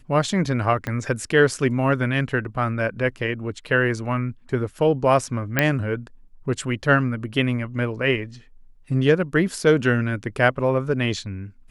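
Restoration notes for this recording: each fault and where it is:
0.87 s: pop -14 dBFS
5.59 s: pop -3 dBFS

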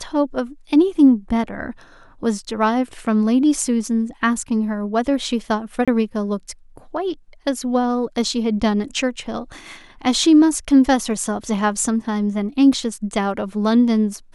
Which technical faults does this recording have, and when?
5.85–5.88 s: dropout 26 ms

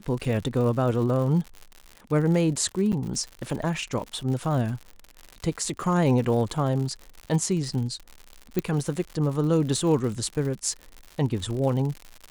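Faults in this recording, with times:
crackle 110 per s -32 dBFS
2.92–2.93 s: dropout 7.7 ms
8.59 s: pop -12 dBFS

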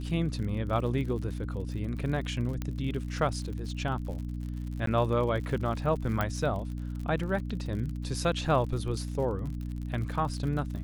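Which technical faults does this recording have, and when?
crackle 55 per s -37 dBFS
hum 60 Hz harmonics 5 -35 dBFS
2.62 s: pop -20 dBFS
4.86–4.87 s: dropout 13 ms
6.21 s: pop -15 dBFS

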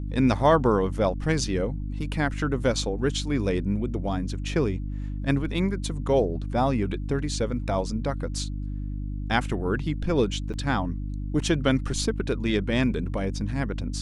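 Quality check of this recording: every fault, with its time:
hum 50 Hz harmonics 6 -31 dBFS
10.53–10.54 s: dropout 7.9 ms

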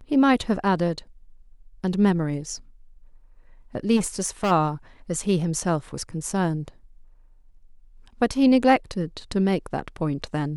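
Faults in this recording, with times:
3.96–4.52 s: clipped -19 dBFS

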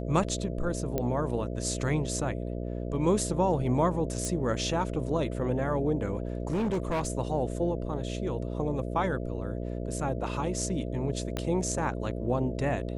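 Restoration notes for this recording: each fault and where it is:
buzz 60 Hz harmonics 11 -34 dBFS
0.98 s: pop -16 dBFS
4.25 s: pop -19 dBFS
6.51–7.07 s: clipped -25 dBFS
11.37 s: pop -17 dBFS

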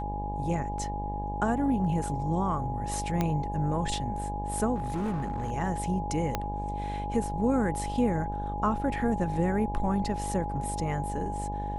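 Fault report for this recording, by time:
buzz 50 Hz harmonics 20 -35 dBFS
whine 830 Hz -34 dBFS
3.21 s: pop -14 dBFS
4.75–5.51 s: clipped -27 dBFS
6.35 s: pop -13 dBFS

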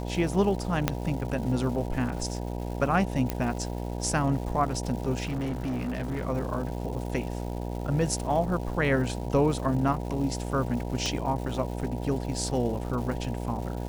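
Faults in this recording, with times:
buzz 60 Hz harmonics 16 -33 dBFS
crackle 430 per s -38 dBFS
0.88 s: pop -8 dBFS
3.30 s: pop -13 dBFS
5.23–6.24 s: clipped -27 dBFS
11.06 s: pop -15 dBFS

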